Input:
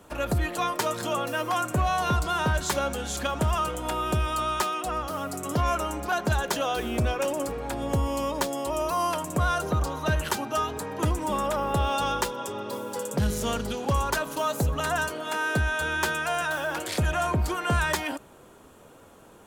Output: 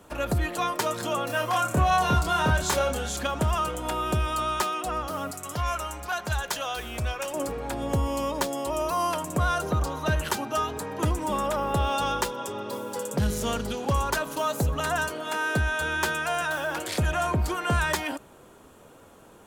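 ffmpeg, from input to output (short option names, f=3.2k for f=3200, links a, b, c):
-filter_complex "[0:a]asettb=1/sr,asplit=3[a][b][c];[a]atrim=end=1.274[d];[b]atrim=start=1.27:end=3.09,asetpts=PTS-STARTPTS,afade=t=in:d=0.004:c=qsin,afade=t=out:st=1.816:d=0.004:c=qsin,asplit=2[e][f];[f]adelay=27,volume=-3dB[g];[e][g]amix=inputs=2:normalize=0,atrim=end_sample=80262[h];[c]atrim=start=3.086[i];[d][h]acrossfade=d=0.004:c1=hsin:c2=qsin[j];[j][i]acrossfade=d=0.004:c1=qsin:c2=hsin,asettb=1/sr,asplit=3[k][l][m];[k]atrim=end=5.314[n];[l]atrim=start=5.31:end=7.34,asetpts=PTS-STARTPTS,afade=t=in:d=0.004:c=qsin,afade=t=out:st=2.026:d=0.004:c=qsin,equalizer=f=280:w=0.57:g=-12[o];[m]atrim=start=7.336[p];[n][o]acrossfade=d=0.004:c1=hsin:c2=qsin[q];[q][p]acrossfade=d=0.004:c1=qsin:c2=hsin"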